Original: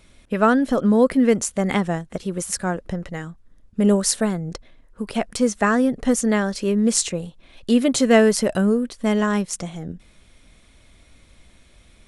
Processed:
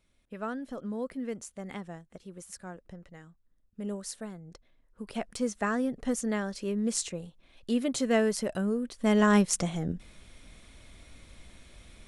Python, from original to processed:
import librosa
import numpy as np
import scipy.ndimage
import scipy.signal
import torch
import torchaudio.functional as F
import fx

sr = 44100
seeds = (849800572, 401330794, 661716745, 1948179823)

y = fx.gain(x, sr, db=fx.line((4.45, -19.0), (5.15, -11.0), (8.71, -11.0), (9.36, 0.0)))